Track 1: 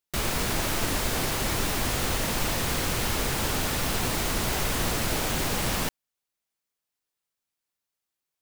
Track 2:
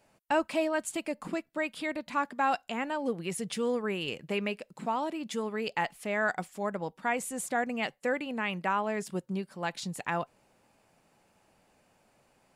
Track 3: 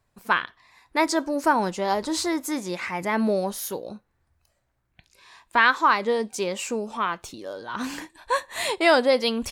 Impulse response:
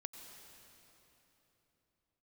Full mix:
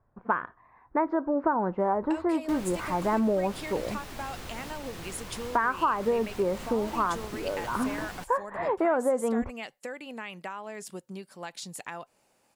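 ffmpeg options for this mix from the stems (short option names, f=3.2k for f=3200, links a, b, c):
-filter_complex "[0:a]highshelf=f=6.5k:g=-7,alimiter=limit=-19.5dB:level=0:latency=1:release=459,adelay=2350,volume=-11dB[a];[1:a]bass=f=250:g=-6,treble=f=4k:g=6,acompressor=threshold=-33dB:ratio=5,adelay=1800,volume=-2dB[b];[2:a]lowpass=f=1.4k:w=0.5412,lowpass=f=1.4k:w=1.3066,volume=2.5dB[c];[a][b][c]amix=inputs=3:normalize=0,acompressor=threshold=-22dB:ratio=6"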